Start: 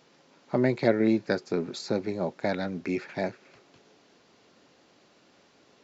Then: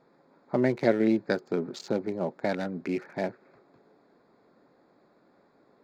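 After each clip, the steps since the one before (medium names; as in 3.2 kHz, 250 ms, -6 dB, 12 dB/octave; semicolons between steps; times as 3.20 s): local Wiener filter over 15 samples; peaking EQ 85 Hz -8 dB 0.84 oct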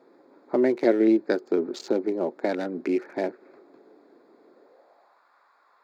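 in parallel at -2 dB: compression, threshold -33 dBFS, peak gain reduction 16 dB; on the sum: high-pass sweep 320 Hz -> 1.1 kHz, 4.47–5.26 s; trim -2.5 dB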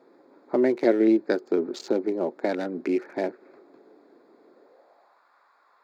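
no audible change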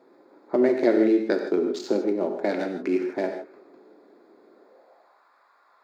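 gated-style reverb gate 180 ms flat, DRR 4 dB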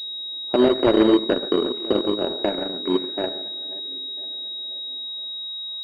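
backward echo that repeats 498 ms, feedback 55%, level -13 dB; Chebyshev shaper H 5 -8 dB, 7 -9 dB, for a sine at -7 dBFS; class-D stage that switches slowly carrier 3.8 kHz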